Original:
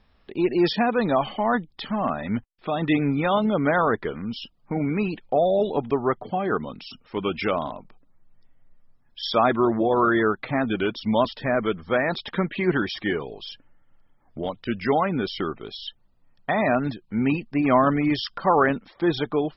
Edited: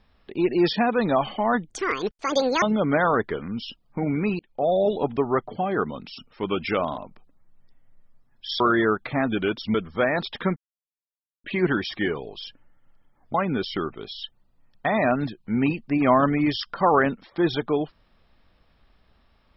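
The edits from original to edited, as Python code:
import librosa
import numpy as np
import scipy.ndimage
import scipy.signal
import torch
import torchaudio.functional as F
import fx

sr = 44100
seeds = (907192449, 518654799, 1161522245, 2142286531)

y = fx.edit(x, sr, fx.speed_span(start_s=1.7, length_s=1.66, speed=1.8),
    fx.fade_in_span(start_s=5.13, length_s=0.35),
    fx.cut(start_s=9.34, length_s=0.64),
    fx.cut(start_s=11.12, length_s=0.55),
    fx.insert_silence(at_s=12.49, length_s=0.88),
    fx.cut(start_s=14.39, length_s=0.59), tone=tone)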